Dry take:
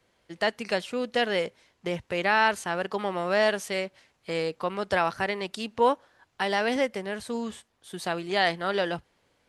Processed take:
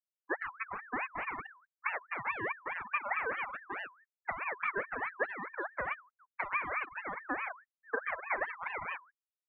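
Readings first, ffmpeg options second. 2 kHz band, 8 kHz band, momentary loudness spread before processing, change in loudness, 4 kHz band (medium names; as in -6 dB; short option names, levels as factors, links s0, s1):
-5.5 dB, under -35 dB, 11 LU, -9.5 dB, -26.0 dB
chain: -filter_complex "[0:a]aresample=11025,aeval=exprs='0.376*sin(PI/2*3.55*val(0)/0.376)':c=same,aresample=44100,acrusher=bits=8:mix=0:aa=0.000001,asplit=2[s0][s1];[s1]aecho=0:1:74|148|222:0.211|0.055|0.0143[s2];[s0][s2]amix=inputs=2:normalize=0,flanger=delay=15.5:depth=2.5:speed=1.2,acompressor=threshold=0.0447:ratio=6,aeval=exprs='val(0)+0.00158*(sin(2*PI*50*n/s)+sin(2*PI*2*50*n/s)/2+sin(2*PI*3*50*n/s)/3+sin(2*PI*4*50*n/s)/4+sin(2*PI*5*50*n/s)/5)':c=same,aeval=exprs='abs(val(0))':c=same,afftfilt=real='re*gte(hypot(re,im),0.0708)':imag='im*gte(hypot(re,im),0.0708)':win_size=1024:overlap=0.75,lowpass=f=600:t=q:w=7.1,lowshelf=f=75:g=-9.5,aeval=exprs='val(0)*sin(2*PI*1400*n/s+1400*0.3/4.7*sin(2*PI*4.7*n/s))':c=same,volume=0.841"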